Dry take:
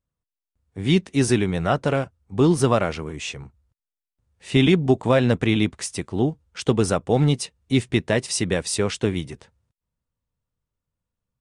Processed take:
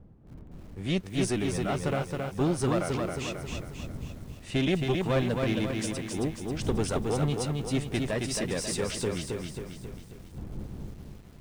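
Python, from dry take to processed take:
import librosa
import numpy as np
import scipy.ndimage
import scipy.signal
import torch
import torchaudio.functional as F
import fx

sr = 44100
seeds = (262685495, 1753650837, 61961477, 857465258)

y = fx.diode_clip(x, sr, knee_db=-16.0)
y = fx.dmg_wind(y, sr, seeds[0], corner_hz=160.0, level_db=-37.0)
y = fx.echo_crushed(y, sr, ms=270, feedback_pct=55, bits=8, wet_db=-3.5)
y = F.gain(torch.from_numpy(y), -7.0).numpy()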